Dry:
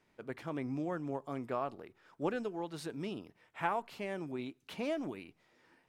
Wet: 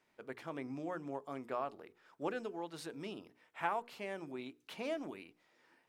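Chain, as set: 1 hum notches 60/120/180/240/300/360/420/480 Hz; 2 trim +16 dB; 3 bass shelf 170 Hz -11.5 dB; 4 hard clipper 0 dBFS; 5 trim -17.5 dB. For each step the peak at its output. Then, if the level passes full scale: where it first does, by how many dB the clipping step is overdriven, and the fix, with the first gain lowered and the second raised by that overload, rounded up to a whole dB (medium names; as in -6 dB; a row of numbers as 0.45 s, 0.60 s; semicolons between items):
-18.0 dBFS, -2.0 dBFS, -2.5 dBFS, -2.5 dBFS, -20.0 dBFS; nothing clips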